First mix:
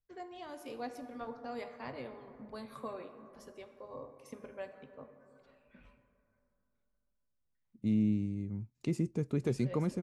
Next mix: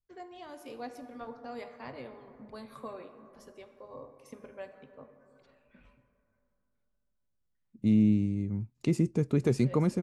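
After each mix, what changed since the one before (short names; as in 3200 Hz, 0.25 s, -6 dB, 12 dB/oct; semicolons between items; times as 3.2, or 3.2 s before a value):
second voice +6.0 dB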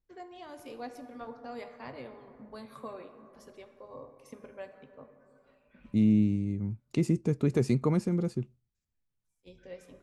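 second voice: entry -1.90 s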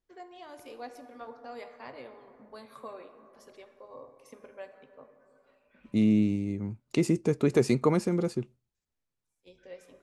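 second voice +6.5 dB; master: add tone controls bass -10 dB, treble 0 dB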